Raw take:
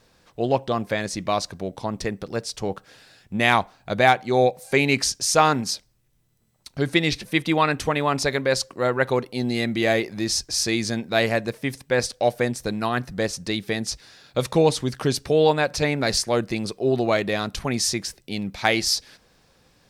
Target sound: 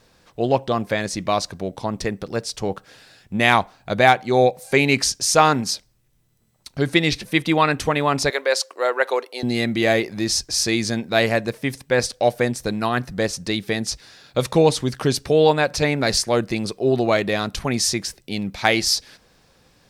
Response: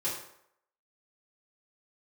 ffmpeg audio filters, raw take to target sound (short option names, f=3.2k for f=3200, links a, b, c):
-filter_complex "[0:a]asettb=1/sr,asplit=3[a][b][c];[a]atrim=end=8.304[d];[b]atrim=start=8.3:end=9.43,asetpts=PTS-STARTPTS,afade=t=in:d=0.004:c=qsin,afade=t=out:st=1.126:d=0.004:c=qsin,highpass=f=430:w=0.5412,highpass=f=430:w=1.3066[e];[c]atrim=start=9.426[f];[d][e]acrossfade=d=0.004:c1=hsin:c2=qsin[g];[g][f]acrossfade=d=0.004:c1=qsin:c2=hsin,volume=2.5dB"